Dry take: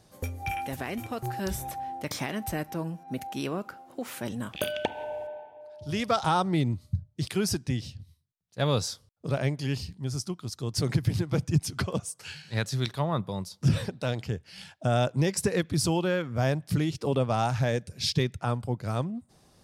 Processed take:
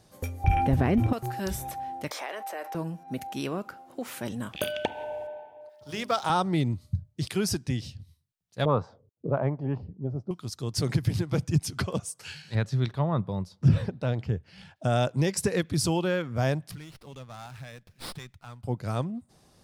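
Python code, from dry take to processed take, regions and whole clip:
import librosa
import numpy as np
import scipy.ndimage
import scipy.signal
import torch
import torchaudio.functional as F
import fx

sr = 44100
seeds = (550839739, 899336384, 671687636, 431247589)

y = fx.chain(x, sr, fx.tilt_eq(slope=-4.0),
    fx.notch(hz=7200.0, q=16.0),
    fx.env_flatten(amount_pct=50), at=(0.44, 1.13))
y = fx.chain(y, sr, fx.highpass(hz=490.0, slope=24),
    fx.high_shelf(hz=2400.0, db=-11.0),
    fx.env_flatten(amount_pct=70), at=(2.1, 2.75))
y = fx.chain(y, sr, fx.law_mismatch(coded='A'),
    fx.highpass(hz=270.0, slope=6),
    fx.hum_notches(base_hz=50, count=8), at=(5.69, 6.3))
y = fx.chain(y, sr, fx.highpass(hz=87.0, slope=12),
    fx.envelope_lowpass(base_hz=290.0, top_hz=1100.0, q=2.4, full_db=-23.5, direction='up'), at=(8.65, 10.31))
y = fx.chain(y, sr, fx.lowpass(hz=1700.0, slope=6),
    fx.low_shelf(hz=140.0, db=6.5), at=(12.55, 14.76))
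y = fx.chain(y, sr, fx.tone_stack(knobs='5-5-5'),
    fx.running_max(window=5), at=(16.71, 18.64))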